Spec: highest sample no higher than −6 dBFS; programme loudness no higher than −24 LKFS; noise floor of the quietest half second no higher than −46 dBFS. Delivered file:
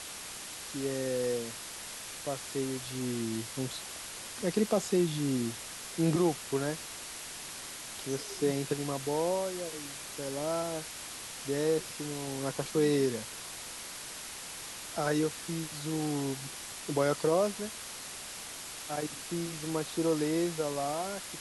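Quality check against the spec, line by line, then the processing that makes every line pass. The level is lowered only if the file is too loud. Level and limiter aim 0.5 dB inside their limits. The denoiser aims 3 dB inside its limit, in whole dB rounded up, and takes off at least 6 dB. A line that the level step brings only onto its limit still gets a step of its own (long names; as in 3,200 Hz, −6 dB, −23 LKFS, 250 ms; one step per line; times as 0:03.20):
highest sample −16.0 dBFS: in spec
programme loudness −33.5 LKFS: in spec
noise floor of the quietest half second −43 dBFS: out of spec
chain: broadband denoise 6 dB, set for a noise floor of −43 dBFS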